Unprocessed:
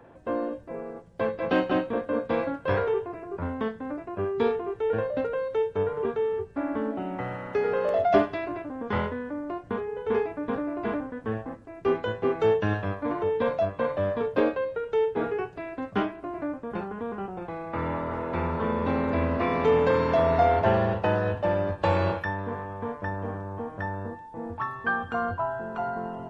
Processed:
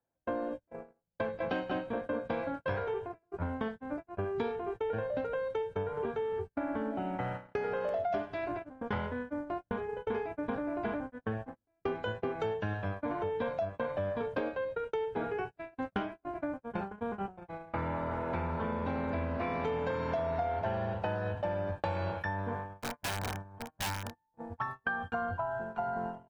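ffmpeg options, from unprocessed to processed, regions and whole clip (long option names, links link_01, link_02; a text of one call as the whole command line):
ffmpeg -i in.wav -filter_complex "[0:a]asettb=1/sr,asplit=3[link_01][link_02][link_03];[link_01]atrim=end=22.794[link_04];[link_02]atrim=start=22.79:end=24.27,asetpts=PTS-STARTPTS,afade=type=in:duration=0.004:curve=qsin,afade=type=out:start_time=1.476:duration=0.004:curve=qsin,equalizer=frequency=490:width_type=o:width=0.66:gain=-4.5,aeval=exprs='(mod(21.1*val(0)+1,2)-1)/21.1':channel_layout=same[link_05];[link_03]atrim=start=24.266[link_06];[link_04][link_05]acrossfade=duration=0.004:curve1=hsin:curve2=qsin[link_07];[link_07][link_06]acrossfade=duration=0.004:curve1=qsin:curve2=hsin,agate=range=-37dB:threshold=-33dB:ratio=16:detection=peak,aecho=1:1:1.3:0.3,acompressor=threshold=-31dB:ratio=6" out.wav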